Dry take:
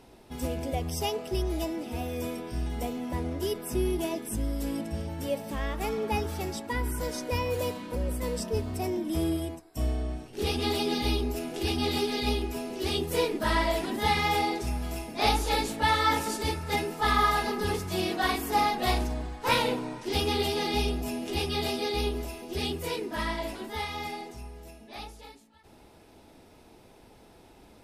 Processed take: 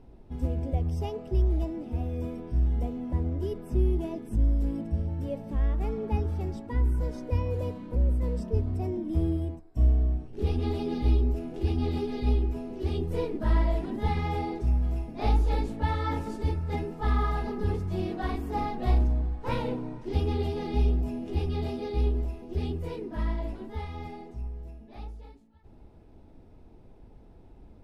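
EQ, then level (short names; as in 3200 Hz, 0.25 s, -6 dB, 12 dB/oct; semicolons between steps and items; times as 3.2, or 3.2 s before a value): tilt -4 dB/oct; -8.0 dB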